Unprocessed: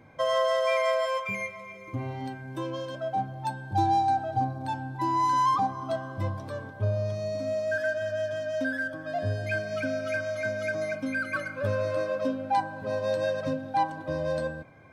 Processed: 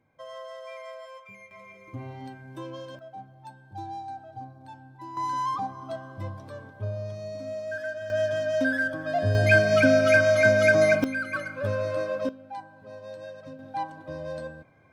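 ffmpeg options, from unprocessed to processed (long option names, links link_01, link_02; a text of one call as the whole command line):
ffmpeg -i in.wav -af "asetnsamples=nb_out_samples=441:pad=0,asendcmd='1.51 volume volume -5dB;2.99 volume volume -13.5dB;5.17 volume volume -5dB;8.1 volume volume 4.5dB;9.35 volume volume 11.5dB;11.04 volume volume 0dB;12.29 volume volume -13dB;13.59 volume volume -6dB',volume=-16dB" out.wav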